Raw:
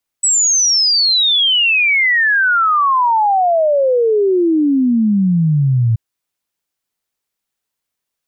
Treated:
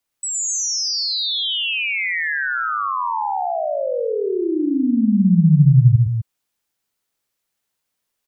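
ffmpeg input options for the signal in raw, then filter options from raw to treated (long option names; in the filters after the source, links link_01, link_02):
-f lavfi -i "aevalsrc='0.316*clip(min(t,5.73-t)/0.01,0,1)*sin(2*PI*8000*5.73/log(110/8000)*(exp(log(110/8000)*t/5.73)-1))':duration=5.73:sample_rate=44100"
-filter_complex "[0:a]acrossover=split=180[link_01][link_02];[link_02]alimiter=limit=-21.5dB:level=0:latency=1[link_03];[link_01][link_03]amix=inputs=2:normalize=0,aecho=1:1:113.7|253.6:0.708|0.447"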